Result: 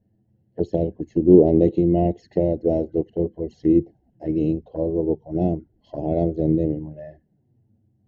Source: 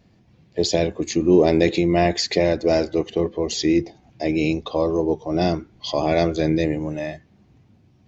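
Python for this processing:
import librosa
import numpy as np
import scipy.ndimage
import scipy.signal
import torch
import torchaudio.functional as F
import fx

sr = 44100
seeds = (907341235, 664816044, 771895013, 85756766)

y = fx.env_flanger(x, sr, rest_ms=9.8, full_db=-17.0)
y = scipy.signal.lfilter(np.full(37, 1.0 / 37), 1.0, y)
y = fx.upward_expand(y, sr, threshold_db=-35.0, expansion=1.5)
y = y * 10.0 ** (5.5 / 20.0)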